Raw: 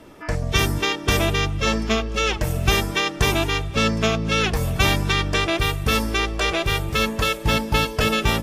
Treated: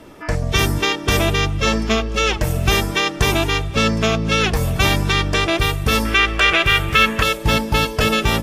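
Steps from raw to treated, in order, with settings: 6.05–7.23 band shelf 2000 Hz +9.5 dB; in parallel at +2 dB: limiter -10 dBFS, peak gain reduction 9 dB; on the sum: gain -3.5 dB

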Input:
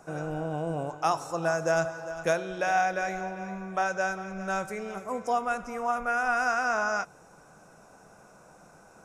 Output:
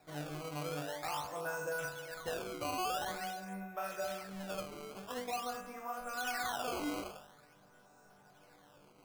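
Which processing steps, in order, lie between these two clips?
resonator bank G2 major, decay 0.72 s; limiter -38.5 dBFS, peak gain reduction 8.5 dB; decimation with a swept rate 14×, swing 160% 0.47 Hz; gain +9 dB

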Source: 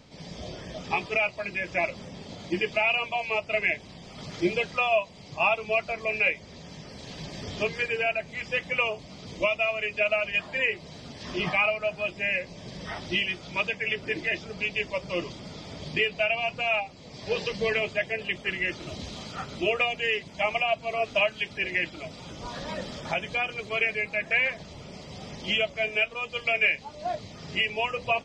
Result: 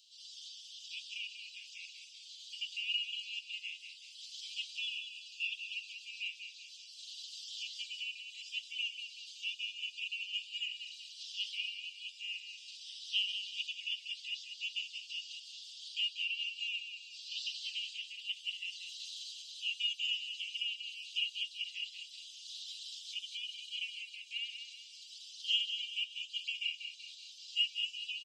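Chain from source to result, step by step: rippled Chebyshev high-pass 2800 Hz, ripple 3 dB; on a send: feedback echo 0.19 s, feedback 42%, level -8 dB

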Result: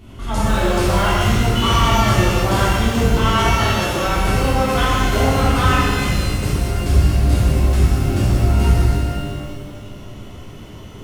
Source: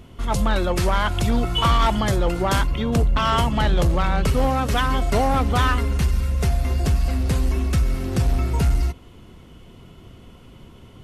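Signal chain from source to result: 3.49–4.05 HPF 490 Hz 6 dB/oct; in parallel at +1 dB: compressor, threshold -29 dBFS, peak gain reduction 13.5 dB; on the sum: shimmer reverb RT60 1.8 s, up +12 st, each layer -8 dB, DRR -10 dB; gain -9 dB

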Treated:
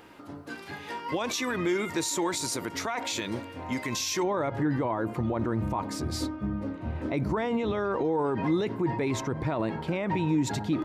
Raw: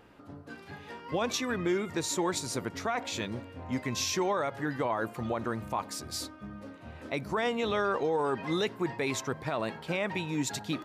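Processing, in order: tilt +1.5 dB/oct, from 4.22 s -2.5 dB/oct; limiter -27 dBFS, peak gain reduction 10.5 dB; small resonant body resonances 320/940/2100 Hz, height 6 dB; gain +5.5 dB

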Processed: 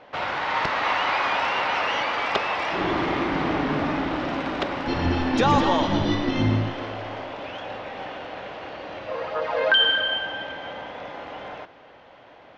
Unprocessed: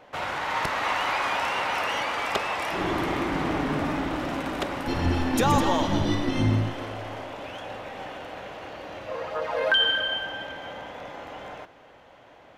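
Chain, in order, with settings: LPF 5200 Hz 24 dB/oct; low shelf 110 Hz -5.5 dB; gain +3 dB

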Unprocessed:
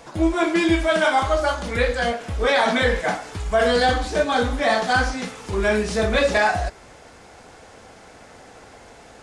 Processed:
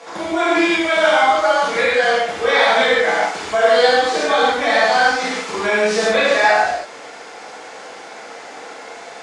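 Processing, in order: compressor 2:1, threshold -26 dBFS, peak gain reduction 7 dB; BPF 410–7300 Hz; non-linear reverb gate 0.18 s flat, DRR -7.5 dB; gain +4 dB

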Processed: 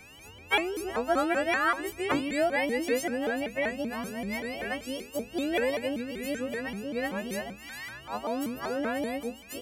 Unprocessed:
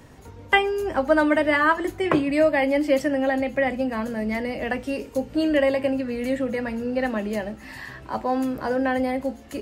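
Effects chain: frequency quantiser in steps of 3 st; whine 2700 Hz -43 dBFS; shaped vibrato saw up 5.2 Hz, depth 250 cents; gain -8 dB

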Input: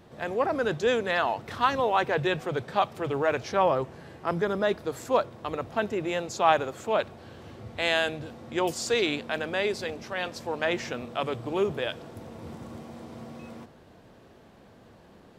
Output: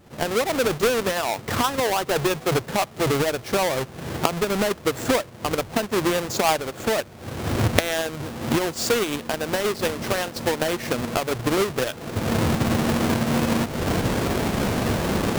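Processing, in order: half-waves squared off; recorder AGC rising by 36 dB/s; transient shaper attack +3 dB, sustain -4 dB; gain -4 dB

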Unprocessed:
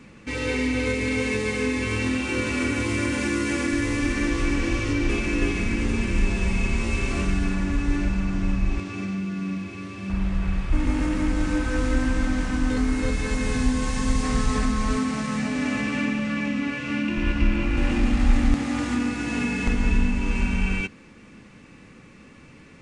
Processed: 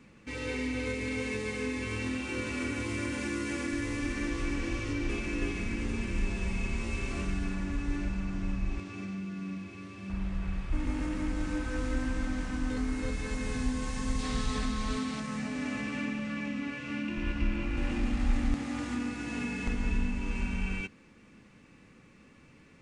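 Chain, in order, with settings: 14.19–15.2 bell 3700 Hz +8 dB 0.77 oct; gain -9 dB

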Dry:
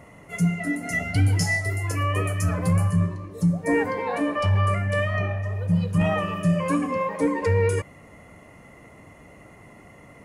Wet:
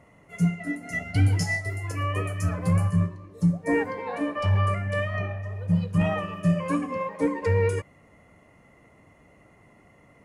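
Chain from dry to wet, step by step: high shelf 10000 Hz -7.5 dB; upward expander 1.5:1, over -32 dBFS

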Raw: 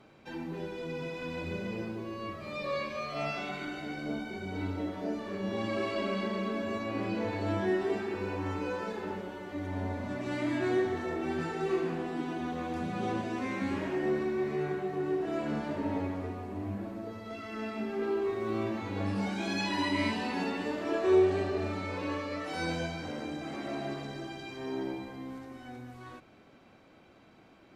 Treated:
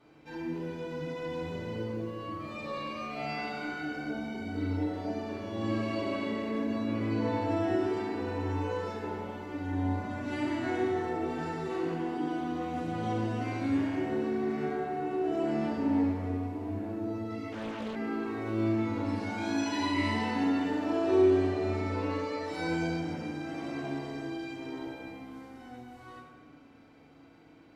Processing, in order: FDN reverb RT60 1.2 s, low-frequency decay 1.4×, high-frequency decay 0.7×, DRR -5.5 dB; 17.52–17.96 Doppler distortion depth 0.84 ms; gain -7.5 dB

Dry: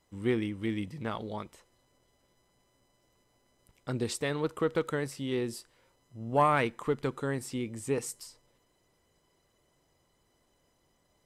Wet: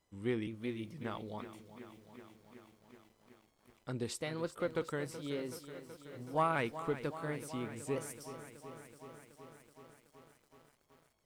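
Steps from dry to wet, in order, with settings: trilling pitch shifter +1.5 st, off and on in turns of 0.468 s; lo-fi delay 0.376 s, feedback 80%, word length 9-bit, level -13 dB; gain -6.5 dB

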